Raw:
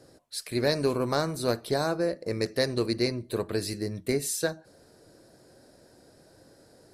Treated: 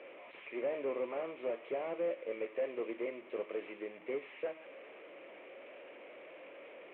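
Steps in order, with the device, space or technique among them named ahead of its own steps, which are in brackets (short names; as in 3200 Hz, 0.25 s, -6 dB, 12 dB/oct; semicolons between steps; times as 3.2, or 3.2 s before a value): digital answering machine (BPF 300–3400 Hz; delta modulation 16 kbps, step -40.5 dBFS; speaker cabinet 350–3400 Hz, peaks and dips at 550 Hz +6 dB, 820 Hz -4 dB, 1500 Hz -8 dB, 2300 Hz +8 dB); gain -6.5 dB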